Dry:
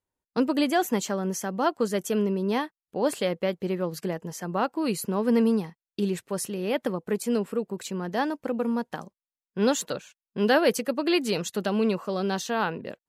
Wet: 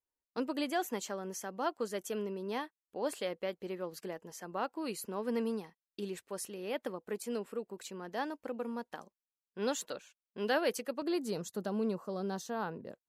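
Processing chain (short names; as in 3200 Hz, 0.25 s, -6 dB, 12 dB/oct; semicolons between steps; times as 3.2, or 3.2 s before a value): bell 140 Hz -11.5 dB 1.2 oct, from 11.02 s 2600 Hz; gain -9 dB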